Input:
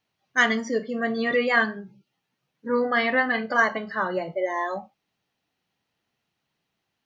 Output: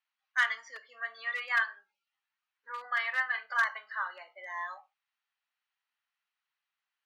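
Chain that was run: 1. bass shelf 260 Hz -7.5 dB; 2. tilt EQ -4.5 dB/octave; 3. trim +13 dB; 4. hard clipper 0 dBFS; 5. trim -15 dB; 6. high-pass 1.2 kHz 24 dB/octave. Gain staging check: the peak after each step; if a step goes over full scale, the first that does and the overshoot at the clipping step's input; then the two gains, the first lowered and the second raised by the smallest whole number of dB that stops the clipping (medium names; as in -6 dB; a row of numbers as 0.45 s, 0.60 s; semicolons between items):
-6.5 dBFS, -9.0 dBFS, +4.0 dBFS, 0.0 dBFS, -15.0 dBFS, -14.0 dBFS; step 3, 4.0 dB; step 3 +9 dB, step 5 -11 dB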